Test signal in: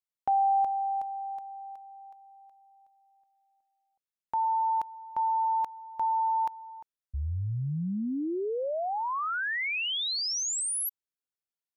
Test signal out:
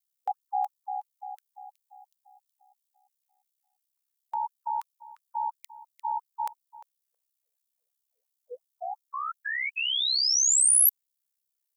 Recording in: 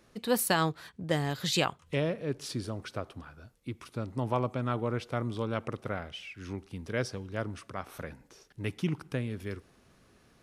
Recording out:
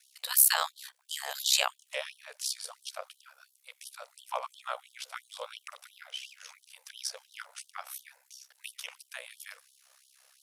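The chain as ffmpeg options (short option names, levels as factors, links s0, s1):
-af "aeval=exprs='val(0)*sin(2*PI*33*n/s)':c=same,crystalizer=i=3.5:c=0,afftfilt=real='re*gte(b*sr/1024,460*pow(3000/460,0.5+0.5*sin(2*PI*2.9*pts/sr)))':imag='im*gte(b*sr/1024,460*pow(3000/460,0.5+0.5*sin(2*PI*2.9*pts/sr)))':win_size=1024:overlap=0.75"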